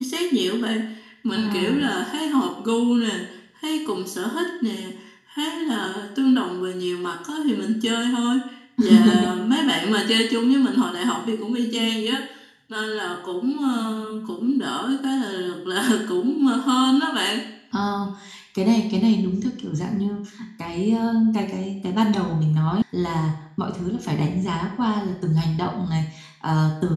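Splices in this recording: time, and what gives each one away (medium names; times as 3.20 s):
22.82 s: sound stops dead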